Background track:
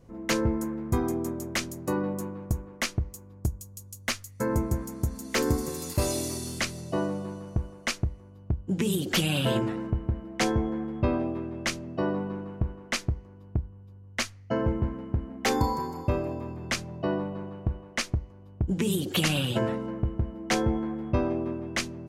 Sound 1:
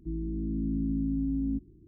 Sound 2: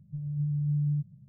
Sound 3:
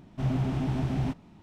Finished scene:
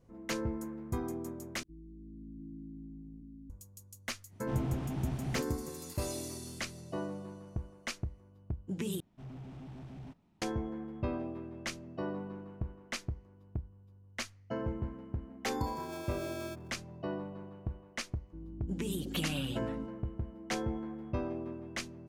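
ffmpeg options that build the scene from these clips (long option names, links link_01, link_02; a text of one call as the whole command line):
ffmpeg -i bed.wav -i cue0.wav -i cue1.wav -i cue2.wav -filter_complex "[1:a]asplit=2[link_01][link_02];[3:a]asplit=2[link_03][link_04];[0:a]volume=-9.5dB[link_05];[link_01]aecho=1:1:705:0.631[link_06];[link_04]asoftclip=type=tanh:threshold=-24dB[link_07];[2:a]aeval=exprs='val(0)*sgn(sin(2*PI*490*n/s))':channel_layout=same[link_08];[link_05]asplit=3[link_09][link_10][link_11];[link_09]atrim=end=1.634[link_12];[link_06]atrim=end=1.87,asetpts=PTS-STARTPTS,volume=-17.5dB[link_13];[link_10]atrim=start=3.496:end=9.004[link_14];[link_07]atrim=end=1.42,asetpts=PTS-STARTPTS,volume=-16.5dB[link_15];[link_11]atrim=start=10.416[link_16];[link_03]atrim=end=1.42,asetpts=PTS-STARTPTS,volume=-8dB,afade=type=in:duration=0.05,afade=type=out:start_time=1.37:duration=0.05,adelay=189189S[link_17];[link_08]atrim=end=1.28,asetpts=PTS-STARTPTS,volume=-14.5dB,afade=type=in:duration=0.004:curve=hsin,afade=type=out:start_time=1.276:duration=0.004:curve=hsin,adelay=15530[link_18];[link_02]atrim=end=1.87,asetpts=PTS-STARTPTS,volume=-12.5dB,afade=type=in:duration=0.004:curve=hsin,afade=type=out:start_time=1.866:duration=0.004:curve=hsin,adelay=18270[link_19];[link_12][link_13]acrossfade=duration=0.004:curve1=hsin:curve2=hsin[link_20];[link_20][link_14]acrossfade=duration=0.004:curve1=hsin:curve2=hsin[link_21];[link_21][link_15]acrossfade=duration=0.004:curve1=hsin:curve2=hsin[link_22];[link_22][link_16]acrossfade=duration=0.004:curve1=hsin:curve2=hsin[link_23];[link_23][link_17][link_18][link_19]amix=inputs=4:normalize=0" out.wav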